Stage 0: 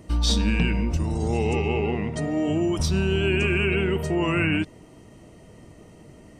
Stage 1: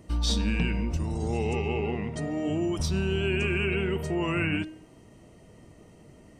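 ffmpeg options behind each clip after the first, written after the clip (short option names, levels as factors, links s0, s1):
-af "bandreject=f=313.6:t=h:w=4,bandreject=f=627.2:t=h:w=4,bandreject=f=940.8:t=h:w=4,bandreject=f=1254.4:t=h:w=4,bandreject=f=1568:t=h:w=4,bandreject=f=1881.6:t=h:w=4,bandreject=f=2195.2:t=h:w=4,bandreject=f=2508.8:t=h:w=4,bandreject=f=2822.4:t=h:w=4,bandreject=f=3136:t=h:w=4,bandreject=f=3449.6:t=h:w=4,bandreject=f=3763.2:t=h:w=4,bandreject=f=4076.8:t=h:w=4,bandreject=f=4390.4:t=h:w=4,bandreject=f=4704:t=h:w=4,volume=0.596"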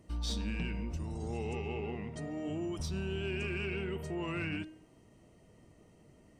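-af "asoftclip=type=tanh:threshold=0.133,volume=0.376"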